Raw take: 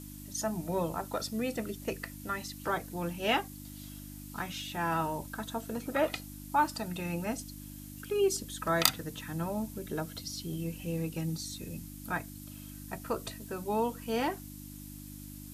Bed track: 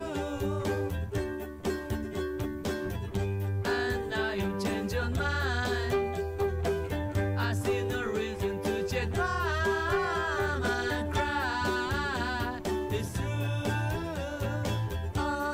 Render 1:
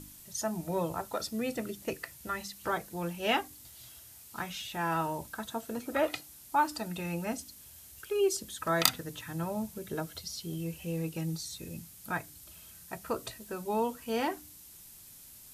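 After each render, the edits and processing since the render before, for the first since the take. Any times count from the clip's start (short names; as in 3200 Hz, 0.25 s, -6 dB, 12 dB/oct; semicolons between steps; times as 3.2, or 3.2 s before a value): de-hum 50 Hz, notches 6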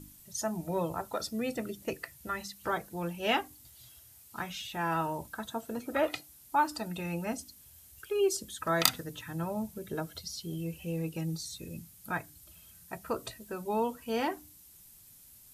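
denoiser 6 dB, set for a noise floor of -53 dBFS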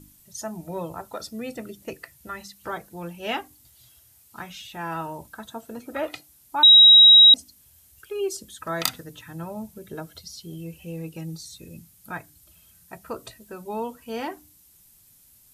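6.63–7.34 bleep 3830 Hz -7.5 dBFS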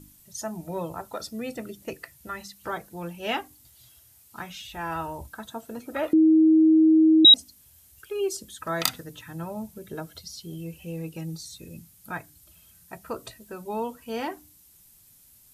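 4.67–5.29 resonant low shelf 110 Hz +11.5 dB, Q 1.5; 6.13–7.25 bleep 317 Hz -13.5 dBFS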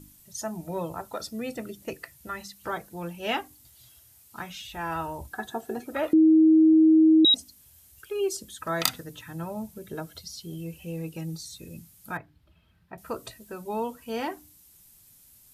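5.31–5.84 small resonant body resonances 380/750/1700 Hz, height 18 dB, ringing for 85 ms; 6.73–7.36 notch comb 780 Hz; 12.17–12.98 air absorption 380 m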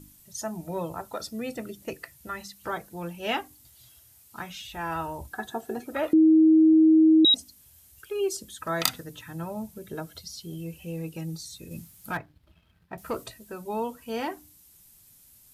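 11.71–13.24 sample leveller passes 1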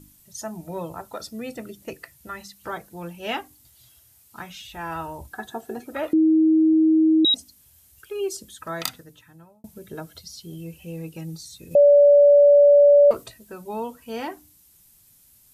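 8.46–9.64 fade out; 11.75–13.11 bleep 576 Hz -9.5 dBFS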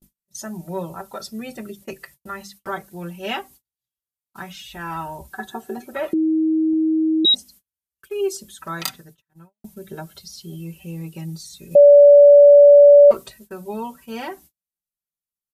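gate -48 dBFS, range -40 dB; comb 5.2 ms, depth 74%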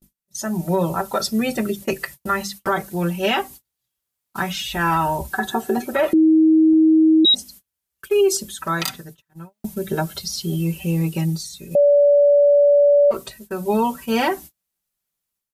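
AGC gain up to 11.5 dB; limiter -10 dBFS, peak gain reduction 9 dB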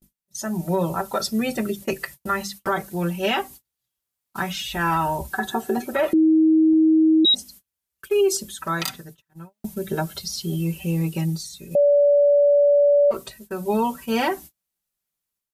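gain -2.5 dB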